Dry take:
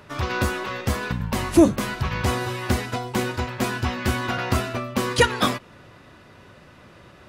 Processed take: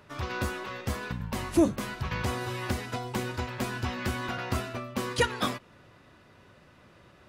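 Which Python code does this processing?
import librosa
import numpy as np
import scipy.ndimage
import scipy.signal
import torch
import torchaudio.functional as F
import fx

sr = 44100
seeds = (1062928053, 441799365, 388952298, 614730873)

y = fx.band_squash(x, sr, depth_pct=70, at=(2.11, 4.29))
y = y * 10.0 ** (-8.0 / 20.0)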